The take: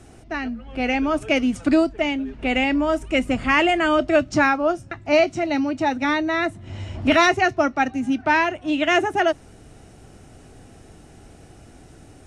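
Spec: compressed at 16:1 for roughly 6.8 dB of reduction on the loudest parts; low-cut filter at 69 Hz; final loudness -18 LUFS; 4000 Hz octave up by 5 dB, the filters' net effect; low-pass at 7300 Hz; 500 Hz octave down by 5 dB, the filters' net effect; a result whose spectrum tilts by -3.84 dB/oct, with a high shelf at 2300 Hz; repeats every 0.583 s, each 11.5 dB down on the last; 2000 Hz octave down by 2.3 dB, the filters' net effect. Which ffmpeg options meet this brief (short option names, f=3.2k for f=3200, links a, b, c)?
-af "highpass=69,lowpass=7.3k,equalizer=f=500:t=o:g=-7.5,equalizer=f=2k:t=o:g=-7,highshelf=f=2.3k:g=6,equalizer=f=4k:t=o:g=5.5,acompressor=threshold=-21dB:ratio=16,aecho=1:1:583|1166|1749:0.266|0.0718|0.0194,volume=8.5dB"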